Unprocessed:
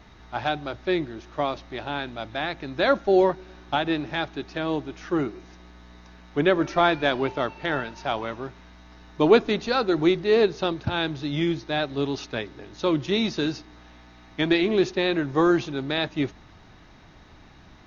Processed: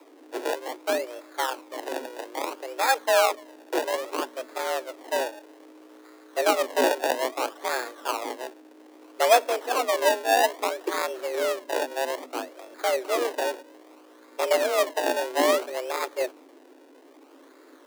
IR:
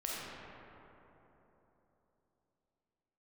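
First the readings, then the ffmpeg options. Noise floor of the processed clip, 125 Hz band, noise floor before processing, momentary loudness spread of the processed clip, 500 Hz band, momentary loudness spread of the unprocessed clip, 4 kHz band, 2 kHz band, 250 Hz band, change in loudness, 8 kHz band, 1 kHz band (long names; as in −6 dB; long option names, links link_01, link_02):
−52 dBFS, below −40 dB, −50 dBFS, 13 LU, −1.0 dB, 12 LU, −2.0 dB, −0.5 dB, −12.0 dB, −1.5 dB, can't be measured, +2.5 dB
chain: -af "acrusher=samples=31:mix=1:aa=0.000001:lfo=1:lforange=31:lforate=0.61,afreqshift=250,volume=-2dB"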